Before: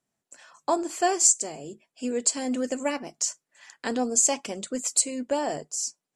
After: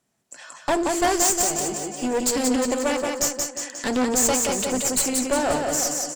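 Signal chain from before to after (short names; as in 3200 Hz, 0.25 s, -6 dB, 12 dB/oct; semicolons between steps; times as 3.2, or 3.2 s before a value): sine folder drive 11 dB, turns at -6.5 dBFS; on a send: feedback echo 0.178 s, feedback 49%, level -4.5 dB; on the sum: one-sided clip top -20.5 dBFS; 2.71–3.22 tone controls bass -7 dB, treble 0 dB; speakerphone echo 0.36 s, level -10 dB; ending taper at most 180 dB/s; gain -6 dB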